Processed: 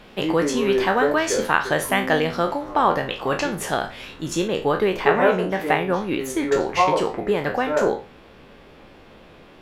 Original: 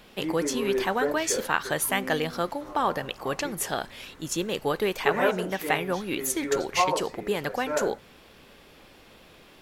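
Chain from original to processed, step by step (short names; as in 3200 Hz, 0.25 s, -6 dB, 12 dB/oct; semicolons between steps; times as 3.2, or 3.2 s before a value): spectral trails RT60 0.33 s; LPF 2800 Hz 6 dB/oct, from 4.48 s 1600 Hz; gain +6 dB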